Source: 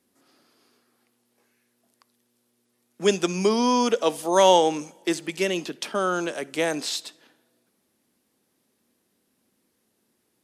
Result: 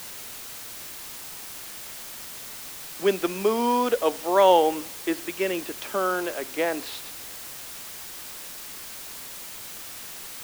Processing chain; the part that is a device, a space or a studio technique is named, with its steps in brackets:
wax cylinder (band-pass filter 280–2,500 Hz; tape wow and flutter; white noise bed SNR 11 dB)

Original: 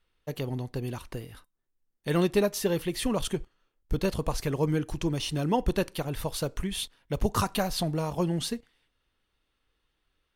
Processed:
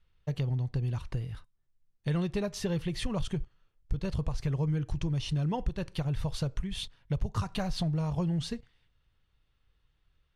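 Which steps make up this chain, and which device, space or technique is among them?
jukebox (low-pass filter 6,500 Hz 12 dB per octave; low shelf with overshoot 190 Hz +9.5 dB, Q 1.5; downward compressor 4 to 1, threshold −26 dBFS, peak gain reduction 13 dB)
level −2 dB

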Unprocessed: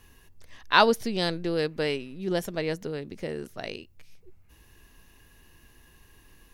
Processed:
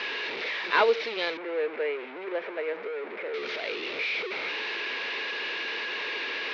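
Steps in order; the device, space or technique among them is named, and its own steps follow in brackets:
digital answering machine (band-pass filter 380–3,200 Hz; linear delta modulator 32 kbit/s, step −28 dBFS; loudspeaker in its box 420–4,300 Hz, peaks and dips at 440 Hz +6 dB, 750 Hz −5 dB, 1,100 Hz −3 dB, 2,300 Hz +9 dB, 3,800 Hz +4 dB)
0:01.37–0:03.34: three-way crossover with the lows and the highs turned down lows −15 dB, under 250 Hz, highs −23 dB, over 2,100 Hz

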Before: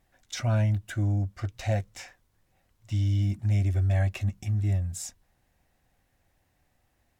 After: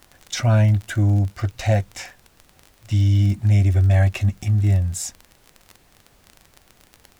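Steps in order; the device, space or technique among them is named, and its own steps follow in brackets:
vinyl LP (surface crackle 28 per second −36 dBFS; pink noise bed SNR 37 dB)
level +8.5 dB

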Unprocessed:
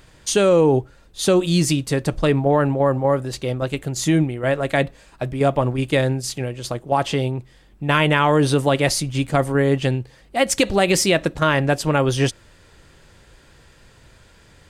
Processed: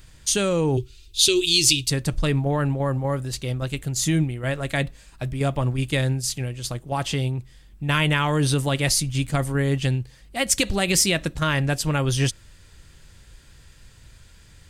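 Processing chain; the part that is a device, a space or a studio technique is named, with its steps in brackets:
0:00.77–0:01.90: drawn EQ curve 120 Hz 0 dB, 190 Hz −19 dB, 380 Hz +6 dB, 620 Hz −24 dB, 930 Hz −12 dB, 1,700 Hz −11 dB, 2,500 Hz +8 dB, 3,800 Hz +11 dB, 9,000 Hz +3 dB
smiley-face EQ (low-shelf EQ 130 Hz +6.5 dB; parametric band 550 Hz −8 dB 2.7 octaves; high-shelf EQ 5,100 Hz +5.5 dB)
level −1.5 dB

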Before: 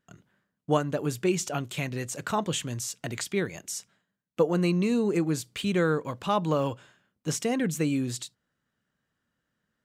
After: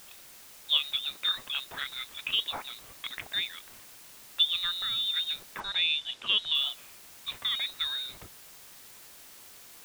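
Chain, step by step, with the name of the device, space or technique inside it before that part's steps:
scrambled radio voice (band-pass filter 400–3,100 Hz; voice inversion scrambler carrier 4,000 Hz; white noise bed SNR 17 dB)
0:05.60–0:06.55: low-pass filter 6,700 Hz 12 dB per octave

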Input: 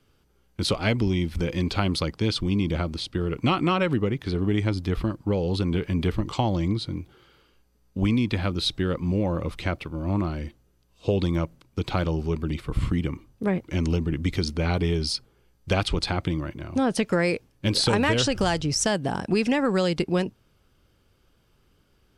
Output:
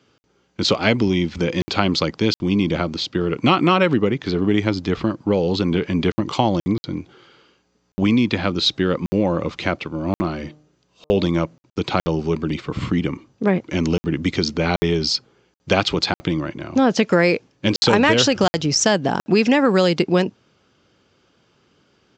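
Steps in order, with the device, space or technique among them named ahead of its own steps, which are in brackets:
call with lost packets (high-pass filter 160 Hz 12 dB per octave; downsampling to 16,000 Hz; dropped packets of 60 ms random)
0:10.18–0:11.29: hum removal 151 Hz, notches 8
level +7.5 dB

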